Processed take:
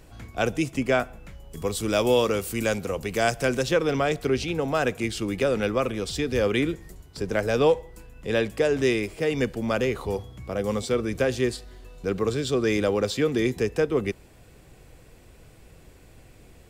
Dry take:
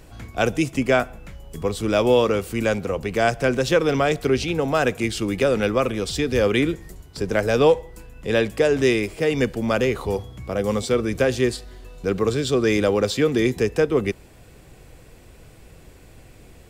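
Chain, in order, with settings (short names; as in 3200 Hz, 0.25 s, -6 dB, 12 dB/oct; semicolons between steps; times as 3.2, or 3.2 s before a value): 1.57–3.63 high shelf 4900 Hz +11 dB; gain -4 dB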